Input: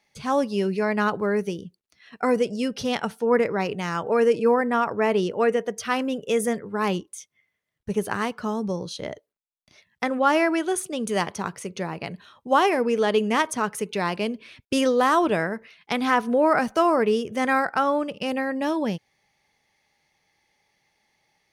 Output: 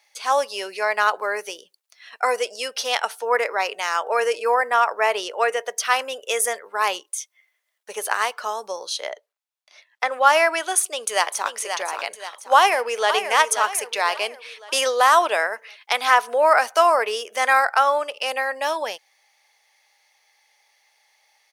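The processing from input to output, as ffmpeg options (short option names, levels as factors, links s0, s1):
-filter_complex "[0:a]asettb=1/sr,asplit=3[s0][s1][s2];[s0]atrim=end=9.094[s3];[s1]atrim=start=9.09:end=10.12,asetpts=PTS-STARTPTS,afade=t=in:d=0.004:c=qsin,afade=t=out:st=1.026:d=0.004:c=qsin,lowpass=f=3500:p=1[s4];[s2]atrim=start=10.116[s5];[s3][s4]acrossfade=d=0.004:c1=hsin:c2=qsin[s6];[s6][s5]acrossfade=d=0.004:c1=qsin:c2=hsin,asplit=2[s7][s8];[s8]afade=t=in:st=10.79:d=0.01,afade=t=out:st=11.55:d=0.01,aecho=0:1:530|1060|1590|2120|2650:0.421697|0.189763|0.0853935|0.0384271|0.0172922[s9];[s7][s9]amix=inputs=2:normalize=0,asplit=2[s10][s11];[s11]afade=t=in:st=12.56:d=0.01,afade=t=out:st=13.13:d=0.01,aecho=0:1:530|1060|1590|2120|2650:0.354813|0.159666|0.0718497|0.0323324|0.0145496[s12];[s10][s12]amix=inputs=2:normalize=0,highpass=f=590:w=0.5412,highpass=f=590:w=1.3066,highshelf=f=4300:g=6,volume=1.88"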